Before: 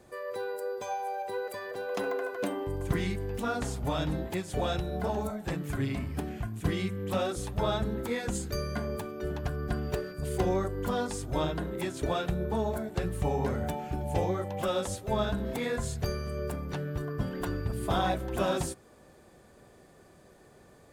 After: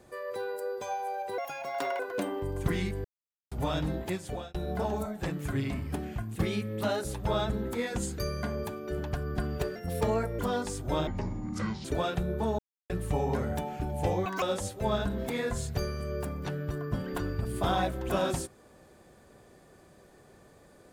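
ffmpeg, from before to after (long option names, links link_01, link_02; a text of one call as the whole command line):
ffmpeg -i in.wav -filter_complex "[0:a]asplit=16[link_01][link_02][link_03][link_04][link_05][link_06][link_07][link_08][link_09][link_10][link_11][link_12][link_13][link_14][link_15][link_16];[link_01]atrim=end=1.384[link_17];[link_02]atrim=start=1.38:end=2.24,asetpts=PTS-STARTPTS,asetrate=61740,aresample=44100[link_18];[link_03]atrim=start=2.236:end=3.29,asetpts=PTS-STARTPTS,afade=type=out:start_time=1.05:duration=0.004:curve=hsin[link_19];[link_04]atrim=start=3.29:end=3.76,asetpts=PTS-STARTPTS,volume=0[link_20];[link_05]atrim=start=3.76:end=4.79,asetpts=PTS-STARTPTS,afade=type=in:duration=0.004:curve=hsin,afade=type=out:start_time=0.64:duration=0.39[link_21];[link_06]atrim=start=4.79:end=6.594,asetpts=PTS-STARTPTS,afade=type=in:duration=0.004:curve=hsin[link_22];[link_07]atrim=start=6.59:end=7.46,asetpts=PTS-STARTPTS,asetrate=48510,aresample=44100,atrim=end_sample=34879,asetpts=PTS-STARTPTS[link_23];[link_08]atrim=start=7.456:end=10.084[link_24];[link_09]atrim=start=10.08:end=10.83,asetpts=PTS-STARTPTS,asetrate=52038,aresample=44100[link_25];[link_10]atrim=start=10.826:end=11.514[link_26];[link_11]atrim=start=11.51:end=11.96,asetpts=PTS-STARTPTS,asetrate=25578,aresample=44100[link_27];[link_12]atrim=start=11.956:end=12.7,asetpts=PTS-STARTPTS,afade=type=out:start_time=0.74:duration=0.004:curve=hsin[link_28];[link_13]atrim=start=12.7:end=13.01,asetpts=PTS-STARTPTS,volume=0[link_29];[link_14]atrim=start=13.01:end=14.374,asetpts=PTS-STARTPTS,afade=type=in:duration=0.004:curve=hsin[link_30];[link_15]atrim=start=14.37:end=14.69,asetpts=PTS-STARTPTS,asetrate=85995,aresample=44100[link_31];[link_16]atrim=start=14.686[link_32];[link_17][link_18]acrossfade=duration=0.004:curve1=hsin:curve2=hsin[link_33];[link_19][link_20][link_21][link_22]concat=n=4:v=0:a=1[link_34];[link_33][link_34]acrossfade=duration=0.004:curve1=hsin:curve2=hsin[link_35];[link_35][link_23]acrossfade=duration=0.004:curve1=hsin:curve2=hsin[link_36];[link_36][link_24]acrossfade=duration=0.004:curve1=hsin:curve2=hsin[link_37];[link_37][link_25]acrossfade=duration=0.004:curve1=hsin:curve2=hsin[link_38];[link_38][link_26]acrossfade=duration=0.004:curve1=hsin:curve2=hsin[link_39];[link_39][link_27]acrossfade=duration=0.004:curve1=hsin:curve2=hsin[link_40];[link_28][link_29][link_30]concat=n=3:v=0:a=1[link_41];[link_40][link_41]acrossfade=duration=0.004:curve1=hsin:curve2=hsin[link_42];[link_42][link_31]acrossfade=duration=0.004:curve1=hsin:curve2=hsin[link_43];[link_43][link_32]acrossfade=duration=0.004:curve1=hsin:curve2=hsin" out.wav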